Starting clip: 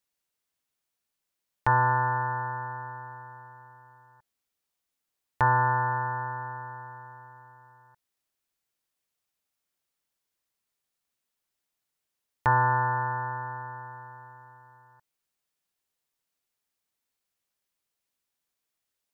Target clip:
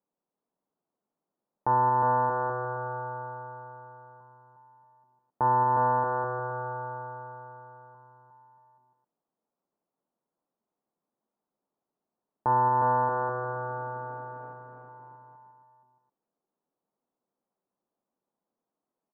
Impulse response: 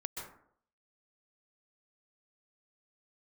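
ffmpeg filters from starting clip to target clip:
-filter_complex "[0:a]asettb=1/sr,asplit=3[s0][s1][s2];[s0]atrim=end=13.124[s3];[s1]atrim=start=13.12:end=14.53,asetpts=PTS-STARTPTS,afade=t=in:d=0.004:c=qsin,afade=t=out:st=1.406:d=0.004:c=qsin,aeval=exprs='val(0)+0.5*0.00501*sgn(val(0))':c=same[s4];[s2]atrim=start=14.526[s5];[s3][s4]acrossfade=d=0.004:c1=hsin:c2=qsin[s6];[s6][s5]acrossfade=d=0.004:c1=qsin:c2=hsin,lowpass=f=1000:w=0.5412,lowpass=f=1000:w=1.3066,lowshelf=f=130:t=q:w=1.5:g=-14,alimiter=limit=0.0841:level=0:latency=1:release=117,asplit=2[s7][s8];[s8]aecho=0:1:360|630|832.5|984.4|1098:0.631|0.398|0.251|0.158|0.1[s9];[s7][s9]amix=inputs=2:normalize=0,volume=1.88"

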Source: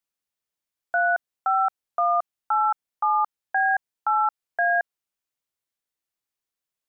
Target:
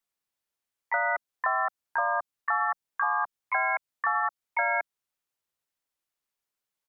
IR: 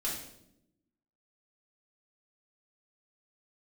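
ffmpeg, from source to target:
-filter_complex "[0:a]asplit=3[s0][s1][s2];[s1]asetrate=37084,aresample=44100,atempo=1.18921,volume=0.562[s3];[s2]asetrate=58866,aresample=44100,atempo=0.749154,volume=0.891[s4];[s0][s3][s4]amix=inputs=3:normalize=0,acrossover=split=310|3000[s5][s6][s7];[s6]acompressor=threshold=0.0631:ratio=6[s8];[s5][s8][s7]amix=inputs=3:normalize=0,equalizer=f=1100:t=o:w=1.9:g=2.5,volume=0.708"

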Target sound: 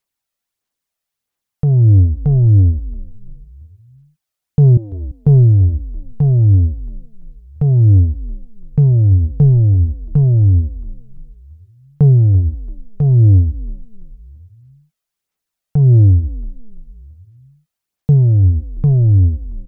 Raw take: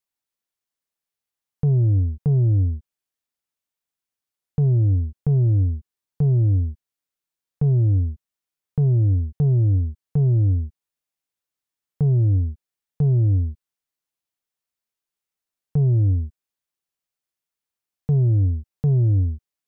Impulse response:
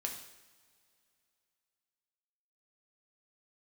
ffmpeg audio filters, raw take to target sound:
-filter_complex "[0:a]asettb=1/sr,asplit=3[s0][s1][s2];[s0]atrim=end=4.774[s3];[s1]atrim=start=4.77:end=5.23,asetpts=PTS-STARTPTS,afade=t=in:d=0.004:c=qsin,afade=t=out:st=0.456:d=0.004:c=qsin,highpass=380[s4];[s2]atrim=start=5.226[s5];[s3][s4]acrossfade=d=0.004:c1=hsin:c2=qsin[s6];[s6][s5]acrossfade=d=0.004:c1=qsin:c2=hsin,aphaser=in_gain=1:out_gain=1:delay=1.6:decay=0.39:speed=1.5:type=sinusoidal,asplit=2[s7][s8];[s8]asplit=4[s9][s10][s11][s12];[s9]adelay=338,afreqshift=-57,volume=0.158[s13];[s10]adelay=676,afreqshift=-114,volume=0.0716[s14];[s11]adelay=1014,afreqshift=-171,volume=0.032[s15];[s12]adelay=1352,afreqshift=-228,volume=0.0145[s16];[s13][s14][s15][s16]amix=inputs=4:normalize=0[s17];[s7][s17]amix=inputs=2:normalize=0,volume=1.88"

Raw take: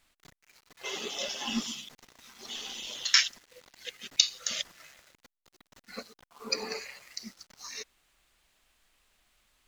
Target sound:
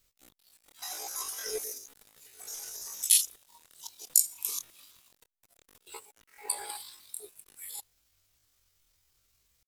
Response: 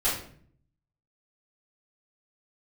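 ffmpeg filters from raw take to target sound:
-af "asetrate=83250,aresample=44100,atempo=0.529732,crystalizer=i=1:c=0,lowshelf=f=380:g=3,volume=0.531"

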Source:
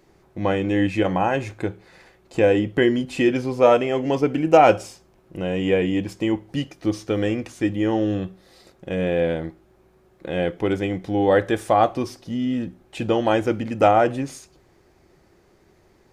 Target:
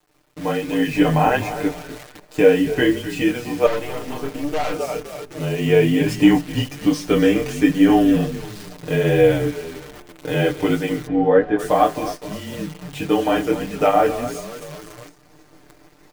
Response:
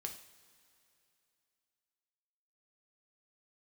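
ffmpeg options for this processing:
-filter_complex "[0:a]asplit=5[s0][s1][s2][s3][s4];[s1]adelay=256,afreqshift=-41,volume=0.237[s5];[s2]adelay=512,afreqshift=-82,volume=0.102[s6];[s3]adelay=768,afreqshift=-123,volume=0.0437[s7];[s4]adelay=1024,afreqshift=-164,volume=0.0188[s8];[s0][s5][s6][s7][s8]amix=inputs=5:normalize=0,dynaudnorm=f=120:g=13:m=4.47,afreqshift=-28,flanger=delay=19:depth=6:speed=1.3,asettb=1/sr,asplit=3[s9][s10][s11];[s9]atrim=end=6.004[s12];[s10]atrim=start=6:end=6.41,asetpts=PTS-STARTPTS,afade=t=in:d=0.004:c=qsin,afade=t=out:st=0.406:d=0.004:c=qsin,acontrast=28[s13];[s11]atrim=start=6.406[s14];[s12][s13]acrossfade=d=0.004:c1=hsin:c2=qsin[s15];[s15][s14]acrossfade=d=0.004:c1=qsin:c2=hsin,acrusher=bits=7:dc=4:mix=0:aa=0.000001,lowshelf=f=240:g=-3.5,asettb=1/sr,asplit=3[s16][s17][s18];[s16]atrim=end=3.664[s19];[s17]atrim=start=3.66:end=4.74,asetpts=PTS-STARTPTS,afade=t=in:d=0.004:c=qsin,afade=t=out:st=1.076:d=0.004:c=qsin,aeval=exprs='(tanh(14.1*val(0)+0.75)-tanh(0.75))/14.1':c=same[s20];[s18]atrim=start=4.736[s21];[s19][s20]acrossfade=d=0.004:c1=hsin:c2=qsin[s22];[s22][s21]acrossfade=d=0.004:c1=qsin:c2=hsin,asplit=3[s23][s24][s25];[s23]afade=t=out:st=11.06:d=0.02[s26];[s24]lowpass=1600,afade=t=in:st=11.06:d=0.02,afade=t=out:st=11.58:d=0.02[s27];[s25]afade=t=in:st=11.58:d=0.02[s28];[s26][s27][s28]amix=inputs=3:normalize=0,aecho=1:1:6.7:0.77,volume=0.891"

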